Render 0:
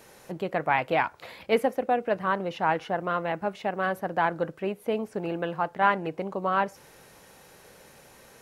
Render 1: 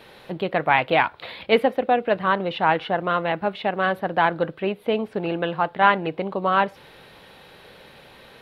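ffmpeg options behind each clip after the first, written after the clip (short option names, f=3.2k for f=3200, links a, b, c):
-af "highshelf=f=4.9k:t=q:w=3:g=-10,volume=5dB"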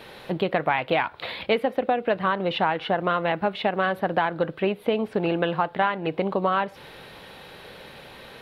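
-af "acompressor=threshold=-22dB:ratio=10,volume=3.5dB"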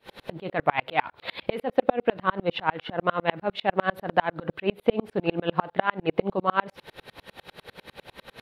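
-af "aeval=exprs='val(0)*pow(10,-37*if(lt(mod(-10*n/s,1),2*abs(-10)/1000),1-mod(-10*n/s,1)/(2*abs(-10)/1000),(mod(-10*n/s,1)-2*abs(-10)/1000)/(1-2*abs(-10)/1000))/20)':c=same,volume=7dB"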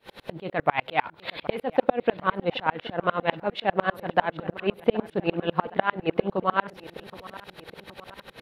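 -filter_complex "[0:a]asplit=2[a][b];[b]adelay=771,lowpass=f=4.8k:p=1,volume=-19dB,asplit=2[c][d];[d]adelay=771,lowpass=f=4.8k:p=1,volume=0.51,asplit=2[e][f];[f]adelay=771,lowpass=f=4.8k:p=1,volume=0.51,asplit=2[g][h];[h]adelay=771,lowpass=f=4.8k:p=1,volume=0.51[i];[a][c][e][g][i]amix=inputs=5:normalize=0"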